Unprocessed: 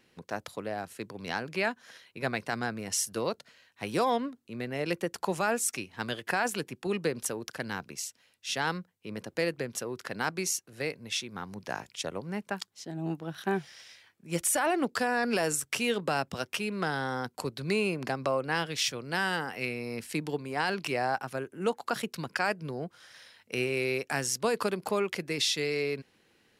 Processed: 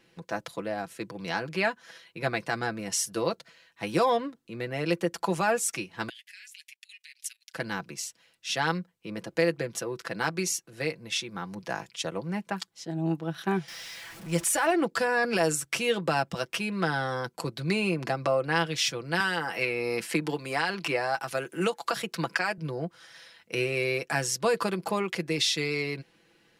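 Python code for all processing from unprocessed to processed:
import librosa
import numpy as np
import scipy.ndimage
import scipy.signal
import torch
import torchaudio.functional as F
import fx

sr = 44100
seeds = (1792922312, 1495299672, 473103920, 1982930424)

y = fx.chain(x, sr, fx.steep_highpass(hz=2000.0, slope=48),
    fx.level_steps(step_db=17), at=(6.09, 7.54))
y = fx.chain(y, sr, fx.zero_step(step_db=-41.5),
    fx.peak_eq(hz=330.0, db=-3.5, octaves=1.1), at=(13.68, 14.72))
y = fx.chain(y, sr, fx.low_shelf(hz=330.0, db=-7.5),
    fx.band_squash(depth_pct=100), at=(19.2, 22.58))
y = fx.high_shelf(y, sr, hz=9300.0, db=-5.0)
y = y + 0.59 * np.pad(y, (int(6.0 * sr / 1000.0), 0))[:len(y)]
y = y * librosa.db_to_amplitude(1.5)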